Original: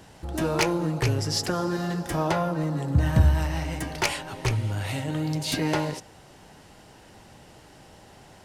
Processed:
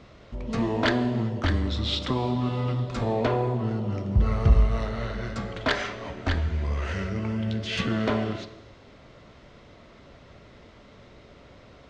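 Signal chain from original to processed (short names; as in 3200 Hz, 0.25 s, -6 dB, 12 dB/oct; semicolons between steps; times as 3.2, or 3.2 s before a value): LPF 5900 Hz 12 dB/oct; varispeed -29%; non-linear reverb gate 0.43 s falling, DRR 11 dB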